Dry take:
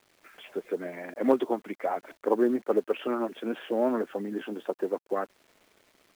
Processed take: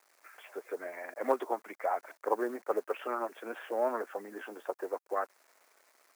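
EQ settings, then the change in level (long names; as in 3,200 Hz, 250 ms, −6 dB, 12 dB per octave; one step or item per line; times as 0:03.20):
high-pass filter 720 Hz 12 dB per octave
parametric band 3,200 Hz −12 dB 0.85 octaves
+2.0 dB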